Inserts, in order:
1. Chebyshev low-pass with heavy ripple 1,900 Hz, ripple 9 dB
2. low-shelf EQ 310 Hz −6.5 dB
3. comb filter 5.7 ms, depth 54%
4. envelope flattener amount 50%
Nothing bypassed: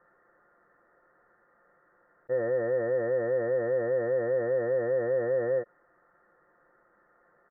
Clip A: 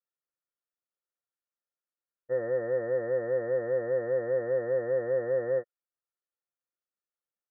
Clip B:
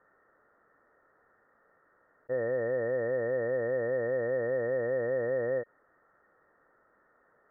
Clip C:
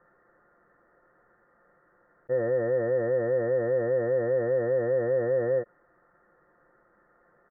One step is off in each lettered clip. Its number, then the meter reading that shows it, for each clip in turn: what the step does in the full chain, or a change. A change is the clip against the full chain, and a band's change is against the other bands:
4, 500 Hz band +1.5 dB
3, 2 kHz band +4.0 dB
2, 125 Hz band +4.5 dB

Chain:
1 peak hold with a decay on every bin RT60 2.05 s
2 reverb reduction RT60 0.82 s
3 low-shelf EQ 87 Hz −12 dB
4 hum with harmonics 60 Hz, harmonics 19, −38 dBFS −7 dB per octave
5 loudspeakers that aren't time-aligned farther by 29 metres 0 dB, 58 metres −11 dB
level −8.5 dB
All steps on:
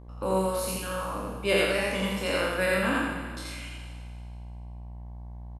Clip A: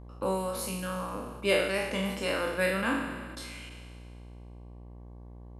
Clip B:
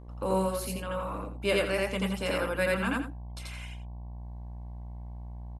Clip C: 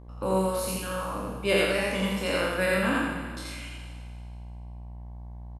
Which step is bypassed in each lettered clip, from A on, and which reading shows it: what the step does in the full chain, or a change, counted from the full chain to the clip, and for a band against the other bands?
5, change in momentary loudness spread +3 LU
1, 125 Hz band +3.5 dB
3, 250 Hz band +1.5 dB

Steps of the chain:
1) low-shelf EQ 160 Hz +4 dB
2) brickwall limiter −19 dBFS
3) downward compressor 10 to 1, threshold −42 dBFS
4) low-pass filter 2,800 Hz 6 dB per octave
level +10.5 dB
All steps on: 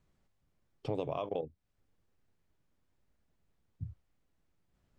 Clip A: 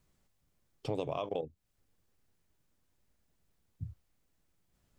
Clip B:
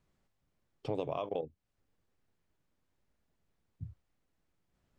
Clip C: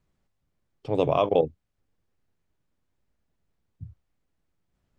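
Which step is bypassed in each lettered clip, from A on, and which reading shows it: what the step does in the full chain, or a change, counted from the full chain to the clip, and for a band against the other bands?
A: 4, 4 kHz band +3.5 dB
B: 1, 125 Hz band −2.5 dB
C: 3, 125 Hz band −5.0 dB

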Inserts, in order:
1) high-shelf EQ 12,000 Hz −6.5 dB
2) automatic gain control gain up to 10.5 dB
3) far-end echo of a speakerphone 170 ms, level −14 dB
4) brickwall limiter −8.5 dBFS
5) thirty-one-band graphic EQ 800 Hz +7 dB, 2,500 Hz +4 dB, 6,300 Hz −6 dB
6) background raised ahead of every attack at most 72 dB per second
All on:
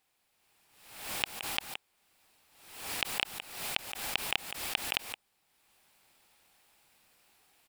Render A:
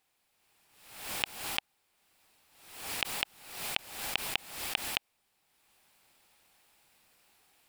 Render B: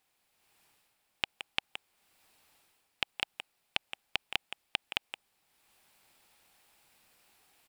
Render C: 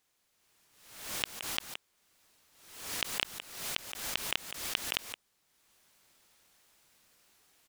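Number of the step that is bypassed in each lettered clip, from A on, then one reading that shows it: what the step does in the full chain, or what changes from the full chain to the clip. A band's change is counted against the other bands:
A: 3, change in momentary loudness spread −3 LU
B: 6, change in crest factor +3.0 dB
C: 5, 1 kHz band −2.5 dB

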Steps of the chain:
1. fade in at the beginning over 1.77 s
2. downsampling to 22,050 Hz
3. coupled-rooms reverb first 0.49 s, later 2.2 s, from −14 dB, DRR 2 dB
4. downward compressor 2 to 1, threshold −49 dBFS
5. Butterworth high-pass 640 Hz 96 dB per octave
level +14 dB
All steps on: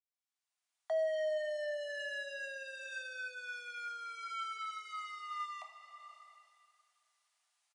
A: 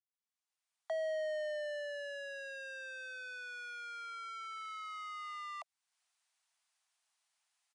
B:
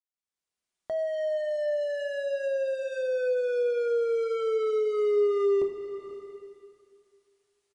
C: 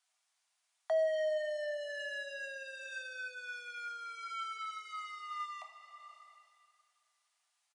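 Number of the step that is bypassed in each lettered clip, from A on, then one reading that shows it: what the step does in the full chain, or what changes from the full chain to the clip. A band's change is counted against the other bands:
3, change in momentary loudness spread −7 LU
5, change in crest factor −2.5 dB
1, change in momentary loudness spread +5 LU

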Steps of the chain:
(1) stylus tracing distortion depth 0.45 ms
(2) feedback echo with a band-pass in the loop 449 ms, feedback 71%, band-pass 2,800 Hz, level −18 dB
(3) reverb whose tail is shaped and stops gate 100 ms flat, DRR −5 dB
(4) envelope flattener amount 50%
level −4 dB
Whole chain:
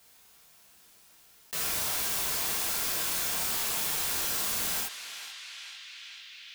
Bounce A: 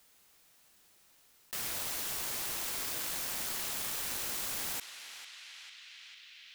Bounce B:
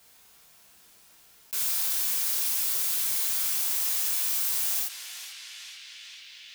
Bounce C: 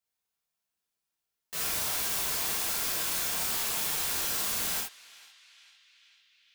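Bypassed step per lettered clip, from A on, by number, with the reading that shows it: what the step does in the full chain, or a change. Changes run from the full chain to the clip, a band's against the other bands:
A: 3, change in crest factor +1.5 dB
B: 1, 1 kHz band −7.0 dB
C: 4, change in momentary loudness spread −12 LU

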